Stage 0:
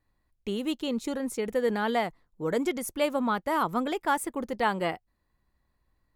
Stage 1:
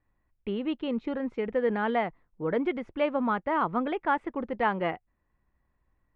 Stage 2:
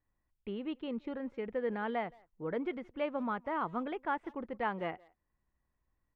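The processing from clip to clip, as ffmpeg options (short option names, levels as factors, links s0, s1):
-af "lowpass=f=2700:w=0.5412,lowpass=f=2700:w=1.3066"
-filter_complex "[0:a]asplit=2[s0][s1];[s1]adelay=170,highpass=300,lowpass=3400,asoftclip=type=hard:threshold=0.075,volume=0.0631[s2];[s0][s2]amix=inputs=2:normalize=0,volume=0.398"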